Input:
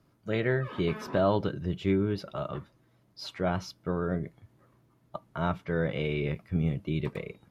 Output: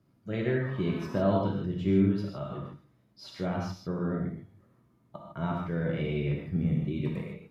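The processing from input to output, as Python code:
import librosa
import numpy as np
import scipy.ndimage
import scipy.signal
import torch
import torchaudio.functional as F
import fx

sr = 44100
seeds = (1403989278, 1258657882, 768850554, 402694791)

y = fx.peak_eq(x, sr, hz=190.0, db=7.5, octaves=2.0)
y = fx.echo_feedback(y, sr, ms=93, feedback_pct=45, wet_db=-22)
y = fx.rev_gated(y, sr, seeds[0], gate_ms=180, shape='flat', drr_db=-1.0)
y = y * 10.0 ** (-8.0 / 20.0)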